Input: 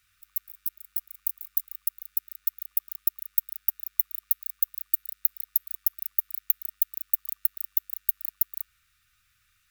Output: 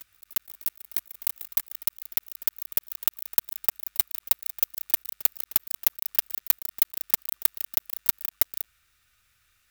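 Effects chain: block floating point 3-bit; reverse echo 0.353 s -19 dB; gain +1 dB

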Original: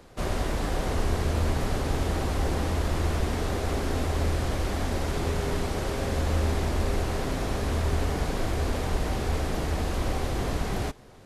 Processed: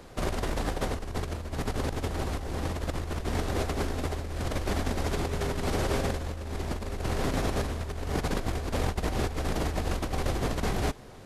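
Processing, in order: negative-ratio compressor -29 dBFS, ratio -0.5

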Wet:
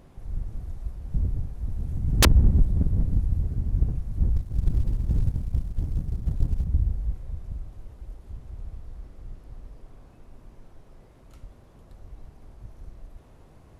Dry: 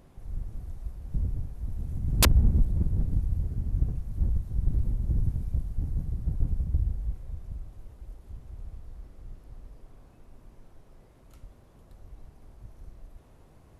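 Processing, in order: 4.36–6.65 G.711 law mismatch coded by A; high shelf 11000 Hz -4.5 dB; Doppler distortion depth 0.83 ms; gain +3.5 dB

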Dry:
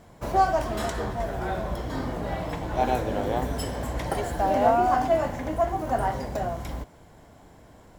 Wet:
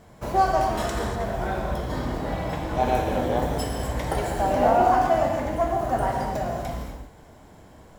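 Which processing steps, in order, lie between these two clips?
non-linear reverb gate 0.27 s flat, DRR 1.5 dB

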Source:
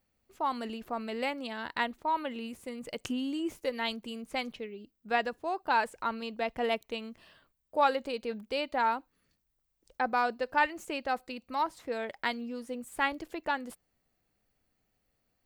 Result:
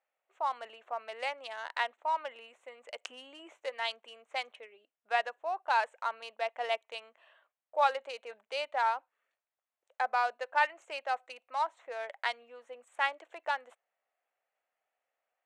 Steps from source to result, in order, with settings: Wiener smoothing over 9 samples; Chebyshev band-pass 610–9300 Hz, order 3

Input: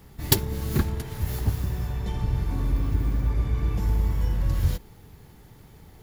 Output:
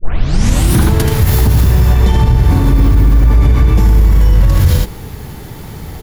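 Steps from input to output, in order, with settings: tape start at the beginning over 0.87 s; on a send: echo 79 ms -5.5 dB; on the sum: maximiser +21.5 dB; gain -1 dB

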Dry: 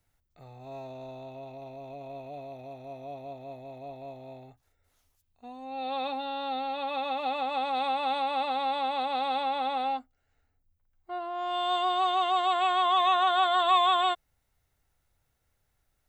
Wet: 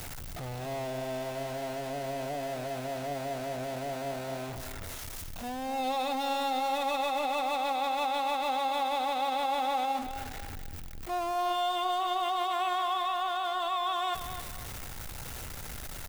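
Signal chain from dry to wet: zero-crossing step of -34.5 dBFS; limiter -24.5 dBFS, peak gain reduction 11.5 dB; on a send: feedback echo 0.258 s, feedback 32%, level -10 dB

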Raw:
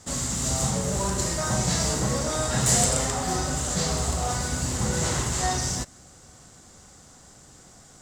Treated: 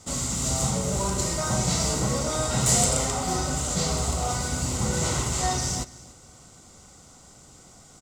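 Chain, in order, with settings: Butterworth band-stop 1700 Hz, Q 6.1; echo 0.288 s -20.5 dB

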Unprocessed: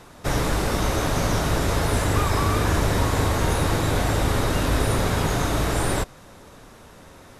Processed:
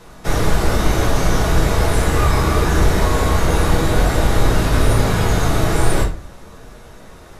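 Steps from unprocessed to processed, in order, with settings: shoebox room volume 30 m³, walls mixed, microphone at 0.66 m

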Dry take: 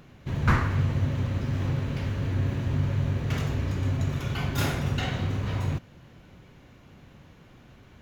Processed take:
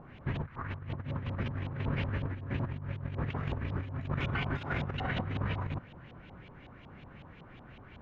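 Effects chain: negative-ratio compressor -30 dBFS, ratio -0.5; LFO low-pass saw up 5.4 Hz 800–3400 Hz; gain -4.5 dB

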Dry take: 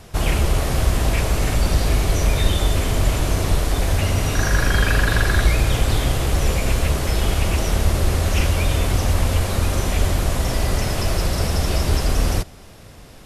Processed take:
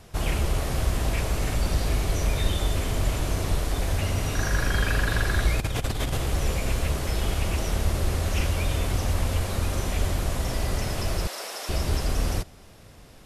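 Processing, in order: 5.59–6.17 negative-ratio compressor -19 dBFS, ratio -0.5; 11.27–11.69 Bessel high-pass 610 Hz, order 4; gain -6.5 dB

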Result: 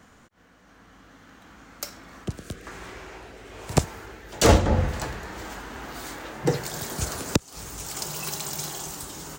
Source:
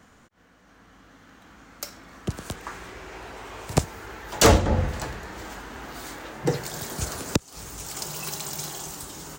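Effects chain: 2.24–4.49 rotary speaker horn 1.1 Hz; gain +1 dB

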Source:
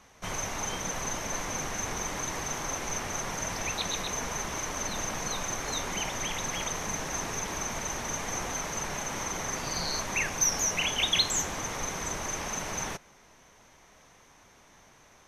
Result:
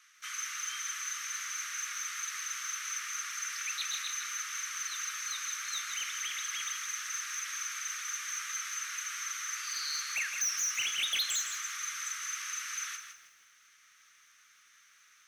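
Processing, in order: steep high-pass 1200 Hz 96 dB/oct; soft clip -25.5 dBFS, distortion -13 dB; lo-fi delay 0.161 s, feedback 35%, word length 10-bit, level -7.5 dB; gain -1.5 dB

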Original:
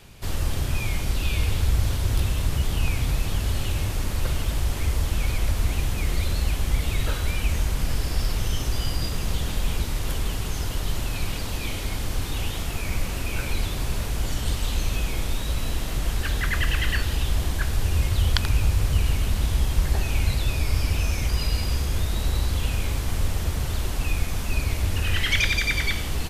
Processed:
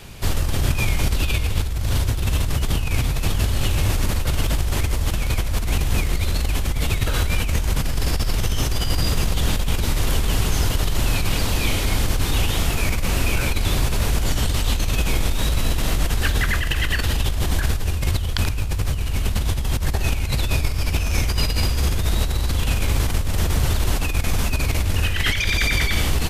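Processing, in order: negative-ratio compressor -25 dBFS, ratio -1; gain +6 dB

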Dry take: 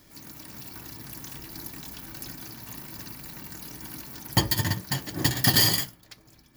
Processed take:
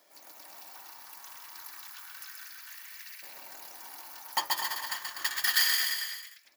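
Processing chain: 0.64–1.4 half-wave gain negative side -3 dB; LFO high-pass saw up 0.31 Hz 600–2100 Hz; bouncing-ball echo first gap 0.13 s, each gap 0.9×, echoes 5; gain -7 dB

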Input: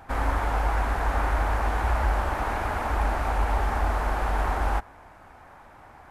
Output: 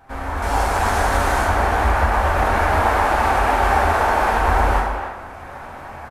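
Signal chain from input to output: 0.42–1.45 delta modulation 64 kbps, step -31 dBFS; 2.84–4.39 low shelf 220 Hz -8 dB; AGC gain up to 15 dB; limiter -7 dBFS, peak gain reduction 5 dB; flange 0.86 Hz, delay 7 ms, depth 4.3 ms, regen -67%; speakerphone echo 0.28 s, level -7 dB; plate-style reverb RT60 0.91 s, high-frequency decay 0.9×, DRR -1.5 dB

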